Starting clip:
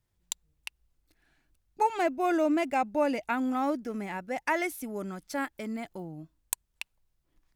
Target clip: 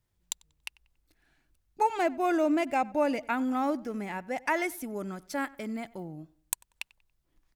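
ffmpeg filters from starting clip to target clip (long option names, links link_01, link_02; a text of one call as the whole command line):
ffmpeg -i in.wav -filter_complex "[0:a]asplit=2[link_01][link_02];[link_02]adelay=94,lowpass=frequency=3400:poles=1,volume=-22dB,asplit=2[link_03][link_04];[link_04]adelay=94,lowpass=frequency=3400:poles=1,volume=0.39,asplit=2[link_05][link_06];[link_06]adelay=94,lowpass=frequency=3400:poles=1,volume=0.39[link_07];[link_01][link_03][link_05][link_07]amix=inputs=4:normalize=0" out.wav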